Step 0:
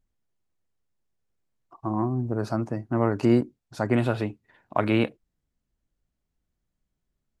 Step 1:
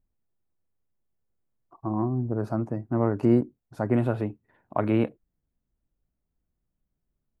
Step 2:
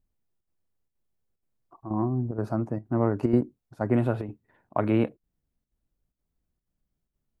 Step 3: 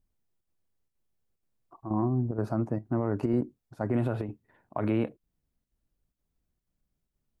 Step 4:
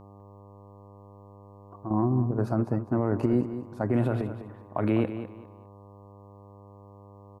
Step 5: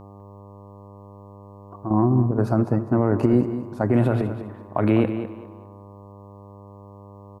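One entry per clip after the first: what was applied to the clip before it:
parametric band 4,800 Hz −14.5 dB 2.6 octaves
square-wave tremolo 2.1 Hz, depth 60%, duty 85%
brickwall limiter −18 dBFS, peak gain reduction 8.5 dB
hum with harmonics 100 Hz, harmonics 12, −52 dBFS −4 dB per octave; on a send: repeating echo 202 ms, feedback 26%, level −11 dB; on the sum: level +2.5 dB
convolution reverb RT60 1.5 s, pre-delay 58 ms, DRR 17.5 dB; level +6 dB

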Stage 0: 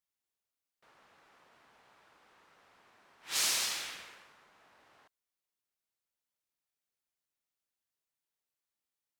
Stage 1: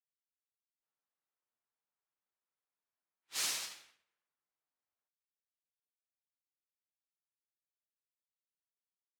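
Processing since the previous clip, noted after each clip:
flanger 1.1 Hz, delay 6 ms, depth 3.2 ms, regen −48%
expander for the loud parts 2.5 to 1, over −55 dBFS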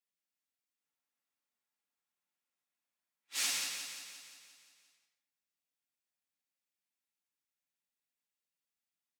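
repeating echo 175 ms, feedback 59%, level −7 dB
convolution reverb RT60 0.45 s, pre-delay 3 ms, DRR 2.5 dB

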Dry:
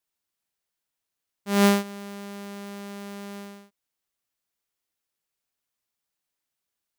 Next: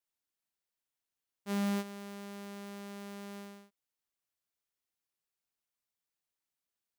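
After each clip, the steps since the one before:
hard clipping −23 dBFS, distortion −7 dB
level −7 dB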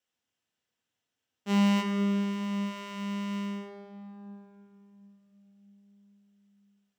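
convolution reverb RT60 3.5 s, pre-delay 3 ms, DRR 1 dB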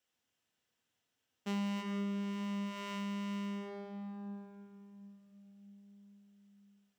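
downward compressor 3 to 1, threshold −40 dBFS, peak gain reduction 14.5 dB
level +1.5 dB

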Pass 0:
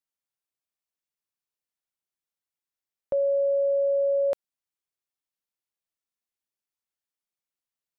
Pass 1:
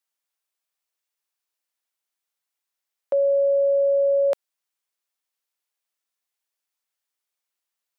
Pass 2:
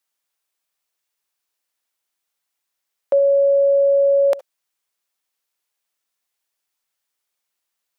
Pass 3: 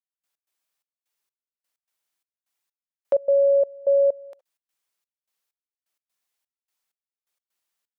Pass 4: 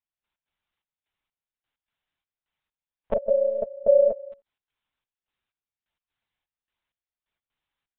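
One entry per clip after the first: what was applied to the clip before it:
Bessel high-pass filter 550 Hz; level +7 dB
convolution reverb, pre-delay 60 ms, DRR 20 dB; level +5.5 dB
gate pattern "..x.xxx..xx." 128 BPM −24 dB; level −2.5 dB
one-pitch LPC vocoder at 8 kHz 220 Hz; level +2 dB

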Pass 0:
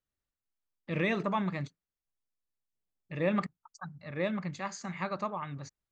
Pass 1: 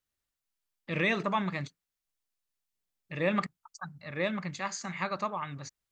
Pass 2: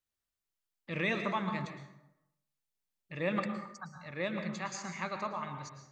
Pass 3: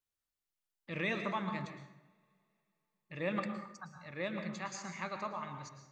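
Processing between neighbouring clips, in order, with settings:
tilt shelving filter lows −3.5 dB, about 1,100 Hz; level +2.5 dB
convolution reverb RT60 0.90 s, pre-delay 103 ms, DRR 6 dB; level −4.5 dB
coupled-rooms reverb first 0.23 s, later 3.3 s, from −18 dB, DRR 19.5 dB; level −3 dB

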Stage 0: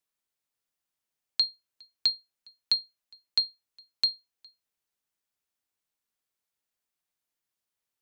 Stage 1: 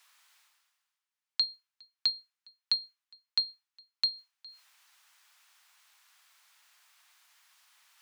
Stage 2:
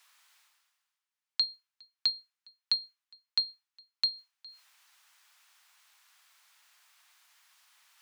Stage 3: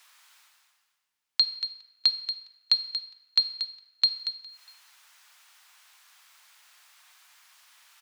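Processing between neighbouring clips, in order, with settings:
high-pass filter 930 Hz 24 dB per octave; high-shelf EQ 6,900 Hz −11.5 dB; reversed playback; upward compression, threshold −42 dBFS; reversed playback
no processing that can be heard
on a send: single-tap delay 233 ms −9.5 dB; on the sum: rectangular room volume 970 cubic metres, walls mixed, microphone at 0.47 metres; level +6 dB

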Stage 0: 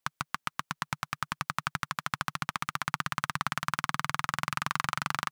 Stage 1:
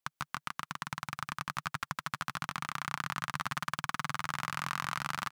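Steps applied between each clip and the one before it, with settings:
single-tap delay 159 ms −3 dB
level −5.5 dB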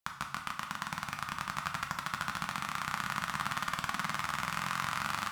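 convolution reverb, pre-delay 3 ms, DRR 3 dB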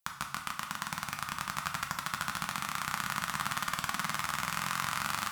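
high-shelf EQ 6,100 Hz +9 dB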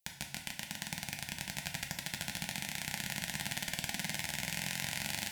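Butterworth band-reject 1,200 Hz, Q 1.2

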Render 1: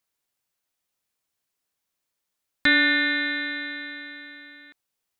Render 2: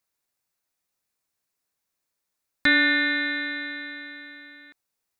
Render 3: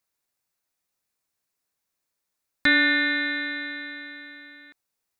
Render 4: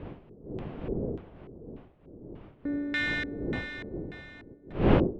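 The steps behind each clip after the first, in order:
parametric band 3,100 Hz −6 dB 0.29 octaves
no processing that can be heard
gap after every zero crossing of 0.077 ms; wind on the microphone 350 Hz −25 dBFS; auto-filter low-pass square 1.7 Hz 420–3,000 Hz; level −8.5 dB

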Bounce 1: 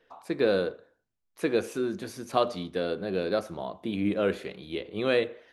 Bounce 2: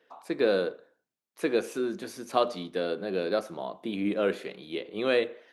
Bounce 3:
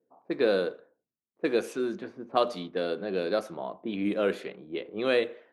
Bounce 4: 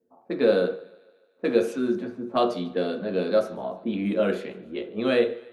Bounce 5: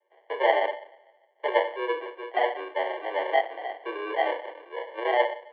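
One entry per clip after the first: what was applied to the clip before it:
high-pass filter 200 Hz 12 dB per octave
low-pass that shuts in the quiet parts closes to 310 Hz, open at −25 dBFS
feedback echo with a high-pass in the loop 148 ms, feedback 58%, high-pass 240 Hz, level −22.5 dB; on a send at −3 dB: convolution reverb RT60 0.45 s, pre-delay 3 ms
decimation without filtering 36×; single-sideband voice off tune +120 Hz 290–2,800 Hz; level −1.5 dB

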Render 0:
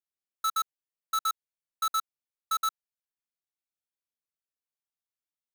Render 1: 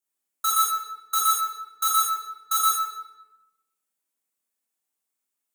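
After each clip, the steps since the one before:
high-pass filter 190 Hz 24 dB per octave
high shelf with overshoot 6,200 Hz +6.5 dB, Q 1.5
rectangular room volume 560 cubic metres, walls mixed, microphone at 4.2 metres
level −1.5 dB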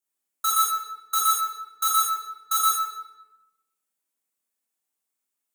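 no processing that can be heard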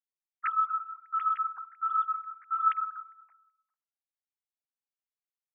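three sine waves on the formant tracks
pitch vibrato 1.3 Hz 12 cents
level −6 dB

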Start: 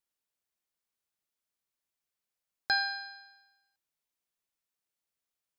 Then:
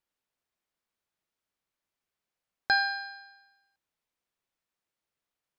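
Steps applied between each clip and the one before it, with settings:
high-shelf EQ 4,700 Hz −11.5 dB
level +5.5 dB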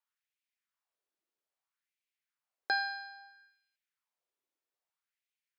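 auto-filter high-pass sine 0.61 Hz 310–2,400 Hz
level −7 dB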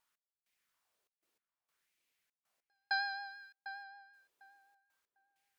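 gate pattern "x..xxxx." 98 BPM −60 dB
pitch vibrato 6 Hz 27 cents
feedback echo with a low-pass in the loop 750 ms, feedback 19%, low-pass 1,800 Hz, level −9.5 dB
level +9 dB

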